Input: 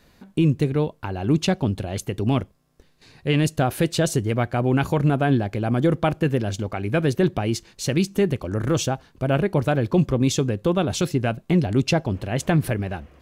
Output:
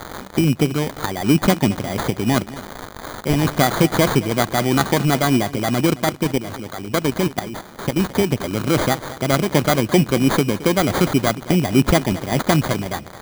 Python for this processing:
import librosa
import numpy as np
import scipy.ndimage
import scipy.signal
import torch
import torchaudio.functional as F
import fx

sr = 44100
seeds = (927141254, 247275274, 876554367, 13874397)

y = x + 0.5 * 10.0 ** (-25.0 / 20.0) * np.diff(np.sign(x), prepend=np.sign(x[:1]))
y = scipy.signal.sosfilt(scipy.signal.butter(2, 130.0, 'highpass', fs=sr, output='sos'), y)
y = fx.high_shelf(y, sr, hz=2200.0, db=-4.5)
y = fx.hpss(y, sr, part='harmonic', gain_db=-7)
y = fx.dynamic_eq(y, sr, hz=480.0, q=1.9, threshold_db=-38.0, ratio=4.0, max_db=-5)
y = fx.level_steps(y, sr, step_db=13, at=(5.89, 7.98), fade=0.02)
y = fx.sample_hold(y, sr, seeds[0], rate_hz=2700.0, jitter_pct=0)
y = fx.echo_feedback(y, sr, ms=219, feedback_pct=22, wet_db=-17.0)
y = y * 10.0 ** (9.0 / 20.0)